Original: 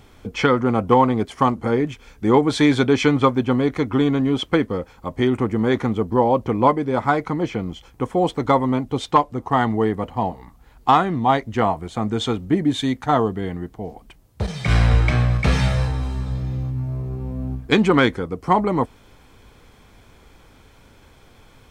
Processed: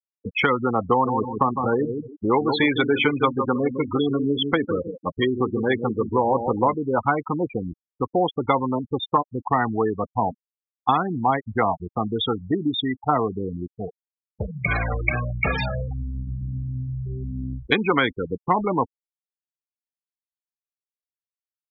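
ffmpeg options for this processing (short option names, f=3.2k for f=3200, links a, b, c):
-filter_complex "[0:a]asettb=1/sr,asplit=3[a][b][c];[a]atrim=end=0.904[d];[b]atrim=start=0.9:end=6.75,asetpts=PTS-STARTPTS,afade=t=in:d=0.004:c=qsin,afade=t=out:st=5.846:d=0.004:c=qsin,asplit=2[e][f];[f]adelay=155,lowpass=f=1.5k:p=1,volume=-8dB,asplit=2[g][h];[h]adelay=155,lowpass=f=1.5k:p=1,volume=0.34,asplit=2[i][j];[j]adelay=155,lowpass=f=1.5k:p=1,volume=0.34,asplit=2[k][l];[l]adelay=155,lowpass=f=1.5k:p=1,volume=0.34[m];[e][g][i][k][m]amix=inputs=5:normalize=0,atrim=end_sample=257985[n];[c]atrim=start=6.746[o];[d][n]acrossfade=d=0.004:c1=hsin:c2=qsin[p];[p][o]acrossfade=d=0.004:c1=qsin:c2=hsin,afftfilt=real='re*gte(hypot(re,im),0.126)':imag='im*gte(hypot(re,im),0.126)':win_size=1024:overlap=0.75,tiltshelf=f=1.2k:g=-4.5,acrossover=split=370|2900[q][r][s];[q]acompressor=threshold=-31dB:ratio=4[t];[r]acompressor=threshold=-23dB:ratio=4[u];[s]acompressor=threshold=-38dB:ratio=4[v];[t][u][v]amix=inputs=3:normalize=0,volume=4.5dB"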